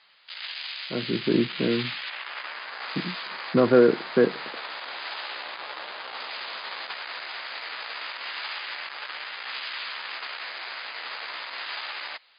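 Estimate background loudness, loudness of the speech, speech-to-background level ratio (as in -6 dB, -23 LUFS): -34.0 LUFS, -23.0 LUFS, 11.0 dB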